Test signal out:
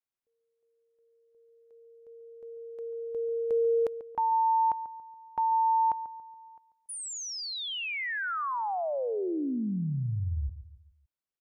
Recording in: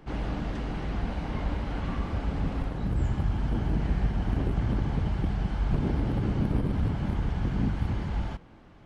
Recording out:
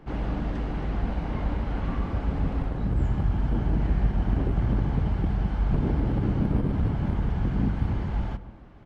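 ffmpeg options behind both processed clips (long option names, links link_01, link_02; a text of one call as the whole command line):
ffmpeg -i in.wav -filter_complex "[0:a]highshelf=frequency=2900:gain=-8.5,asplit=2[link_01][link_02];[link_02]adelay=141,lowpass=frequency=1200:poles=1,volume=-13dB,asplit=2[link_03][link_04];[link_04]adelay=141,lowpass=frequency=1200:poles=1,volume=0.43,asplit=2[link_05][link_06];[link_06]adelay=141,lowpass=frequency=1200:poles=1,volume=0.43,asplit=2[link_07][link_08];[link_08]adelay=141,lowpass=frequency=1200:poles=1,volume=0.43[link_09];[link_03][link_05][link_07][link_09]amix=inputs=4:normalize=0[link_10];[link_01][link_10]amix=inputs=2:normalize=0,volume=2dB" out.wav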